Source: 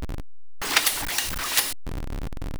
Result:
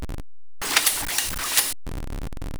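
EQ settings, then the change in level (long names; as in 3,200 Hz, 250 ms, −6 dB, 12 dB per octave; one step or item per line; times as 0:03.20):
parametric band 9,200 Hz +4.5 dB 1 octave
0.0 dB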